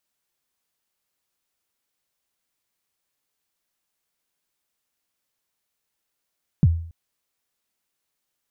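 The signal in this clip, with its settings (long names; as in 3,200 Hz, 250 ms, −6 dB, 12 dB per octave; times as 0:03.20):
synth kick length 0.28 s, from 190 Hz, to 83 Hz, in 38 ms, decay 0.54 s, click off, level −9 dB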